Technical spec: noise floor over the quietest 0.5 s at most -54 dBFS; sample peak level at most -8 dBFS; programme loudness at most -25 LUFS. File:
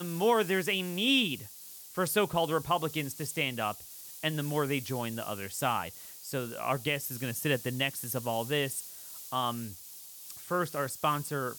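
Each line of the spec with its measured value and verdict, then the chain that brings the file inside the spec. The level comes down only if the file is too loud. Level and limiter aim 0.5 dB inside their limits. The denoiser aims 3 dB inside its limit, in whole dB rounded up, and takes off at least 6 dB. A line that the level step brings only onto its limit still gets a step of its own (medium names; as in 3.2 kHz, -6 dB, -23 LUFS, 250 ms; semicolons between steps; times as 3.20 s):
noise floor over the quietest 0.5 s -48 dBFS: fail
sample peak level -15.0 dBFS: pass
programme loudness -31.0 LUFS: pass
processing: noise reduction 9 dB, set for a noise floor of -48 dBFS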